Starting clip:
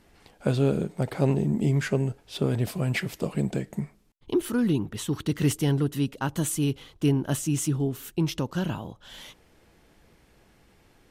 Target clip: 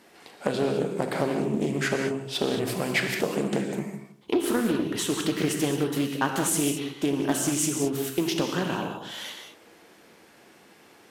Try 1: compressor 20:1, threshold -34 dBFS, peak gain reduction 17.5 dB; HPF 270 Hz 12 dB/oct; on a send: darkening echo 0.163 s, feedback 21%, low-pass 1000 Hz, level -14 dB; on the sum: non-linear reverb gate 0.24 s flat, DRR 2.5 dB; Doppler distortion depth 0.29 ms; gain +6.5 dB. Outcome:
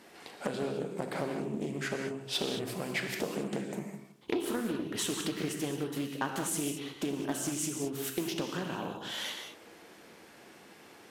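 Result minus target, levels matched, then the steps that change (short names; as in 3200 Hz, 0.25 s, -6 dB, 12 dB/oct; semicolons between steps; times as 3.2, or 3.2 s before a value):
compressor: peak gain reduction +9 dB
change: compressor 20:1, threshold -24.5 dBFS, peak gain reduction 8.5 dB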